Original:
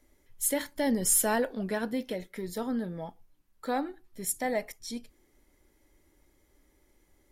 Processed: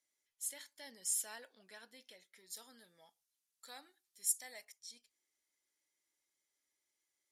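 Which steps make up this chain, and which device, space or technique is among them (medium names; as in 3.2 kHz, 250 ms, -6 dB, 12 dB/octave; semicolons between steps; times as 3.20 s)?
piezo pickup straight into a mixer (low-pass 6.9 kHz 12 dB/octave; differentiator); 2.50–4.65 s: treble shelf 4.6 kHz +12 dB; trim -5.5 dB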